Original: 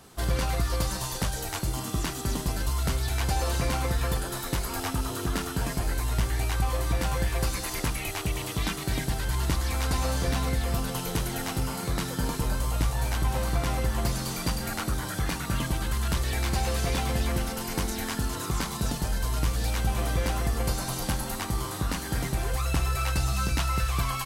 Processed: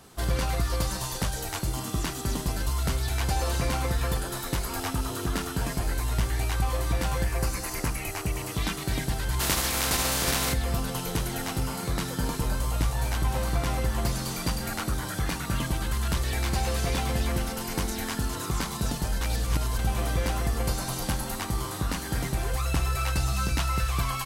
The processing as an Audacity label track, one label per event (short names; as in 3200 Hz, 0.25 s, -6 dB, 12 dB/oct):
7.240000	8.530000	bell 3500 Hz -9 dB 0.45 oct
9.390000	10.520000	spectral contrast lowered exponent 0.48
19.210000	19.790000	reverse